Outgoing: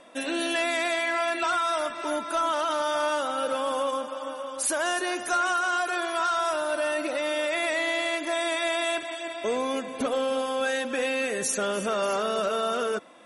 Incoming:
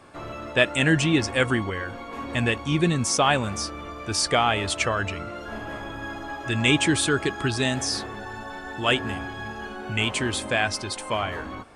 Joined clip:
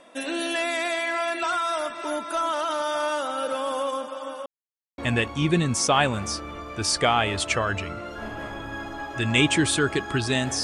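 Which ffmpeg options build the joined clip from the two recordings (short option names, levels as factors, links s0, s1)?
-filter_complex "[0:a]apad=whole_dur=10.63,atrim=end=10.63,asplit=2[s0][s1];[s0]atrim=end=4.46,asetpts=PTS-STARTPTS,afade=t=out:st=4.456:d=0.004:c=hsin[s2];[s1]atrim=start=4.46:end=4.98,asetpts=PTS-STARTPTS,volume=0[s3];[1:a]atrim=start=2.28:end=7.93,asetpts=PTS-STARTPTS,afade=t=in:d=0.004:c=hsin[s4];[s2][s3][s4]concat=n=3:v=0:a=1"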